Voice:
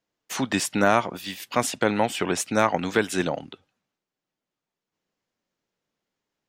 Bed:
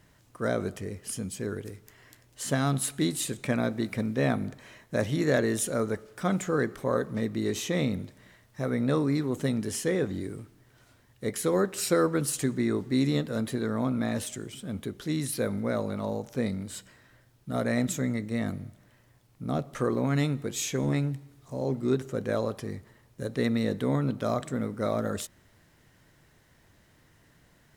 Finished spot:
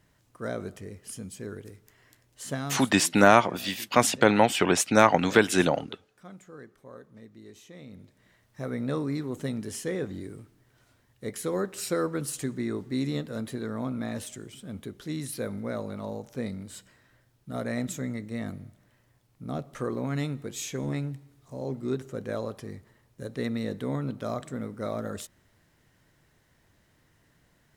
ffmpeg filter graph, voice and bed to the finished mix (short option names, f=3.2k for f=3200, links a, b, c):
-filter_complex "[0:a]adelay=2400,volume=2.5dB[a];[1:a]volume=10.5dB,afade=t=out:st=2.53:d=0.41:silence=0.188365,afade=t=in:st=7.85:d=0.73:silence=0.16788[b];[a][b]amix=inputs=2:normalize=0"